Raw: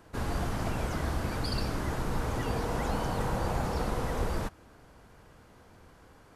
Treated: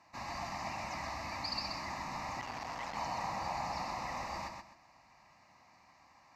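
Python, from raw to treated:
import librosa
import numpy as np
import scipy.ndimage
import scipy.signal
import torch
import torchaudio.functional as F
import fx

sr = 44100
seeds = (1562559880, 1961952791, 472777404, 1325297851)

y = fx.highpass(x, sr, hz=940.0, slope=6)
y = fx.air_absorb(y, sr, metres=54.0)
y = fx.fixed_phaser(y, sr, hz=2200.0, stages=8)
y = fx.echo_feedback(y, sr, ms=128, feedback_pct=27, wet_db=-5)
y = fx.transformer_sat(y, sr, knee_hz=1300.0, at=(2.4, 2.96))
y = F.gain(torch.from_numpy(y), 2.0).numpy()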